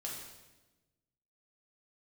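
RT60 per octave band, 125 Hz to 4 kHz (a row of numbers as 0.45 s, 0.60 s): 1.6 s, 1.5 s, 1.2 s, 1.0 s, 1.0 s, 1.0 s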